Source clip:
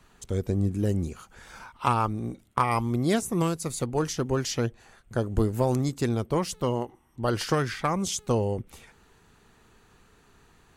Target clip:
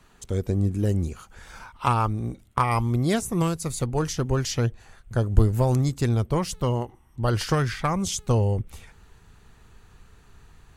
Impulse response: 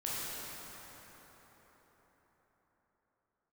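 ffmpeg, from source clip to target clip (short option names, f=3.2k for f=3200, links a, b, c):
-af "asubboost=boost=3:cutoff=140,volume=1.5dB"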